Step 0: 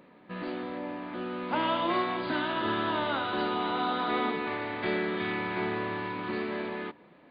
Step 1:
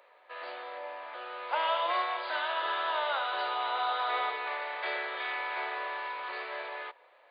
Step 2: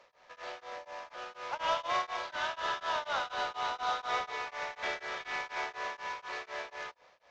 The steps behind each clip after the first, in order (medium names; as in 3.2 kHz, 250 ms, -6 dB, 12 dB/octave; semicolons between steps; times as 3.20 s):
steep high-pass 520 Hz 36 dB/octave
CVSD coder 32 kbps; tremolo of two beating tones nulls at 4.1 Hz